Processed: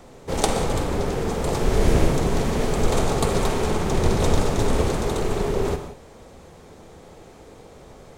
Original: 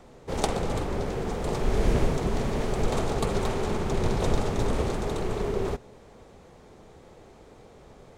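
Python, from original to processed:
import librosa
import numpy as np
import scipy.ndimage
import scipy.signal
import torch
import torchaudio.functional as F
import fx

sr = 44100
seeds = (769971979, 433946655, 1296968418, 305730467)

y = fx.high_shelf(x, sr, hz=6900.0, db=7.0)
y = fx.rev_gated(y, sr, seeds[0], gate_ms=200, shape='flat', drr_db=7.0)
y = y * 10.0 ** (4.5 / 20.0)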